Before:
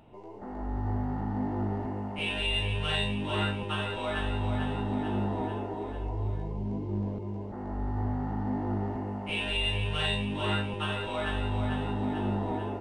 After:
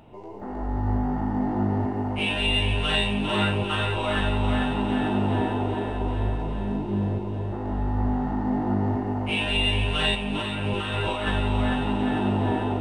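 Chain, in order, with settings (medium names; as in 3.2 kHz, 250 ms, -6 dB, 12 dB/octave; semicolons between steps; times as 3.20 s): 0.98–1.41 s: band-stop 4.1 kHz, Q 9.7; 10.15–11.27 s: compressor with a negative ratio -35 dBFS, ratio -1; echo whose repeats swap between lows and highs 200 ms, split 1 kHz, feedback 84%, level -7.5 dB; trim +5.5 dB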